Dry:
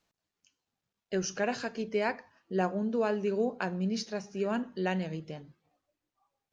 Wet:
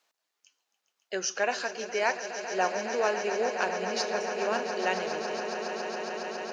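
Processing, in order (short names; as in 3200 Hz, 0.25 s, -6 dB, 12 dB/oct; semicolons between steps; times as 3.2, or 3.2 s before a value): HPF 580 Hz 12 dB/oct; on a send: swelling echo 0.138 s, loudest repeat 8, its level -13 dB; on the sum: gain +5.5 dB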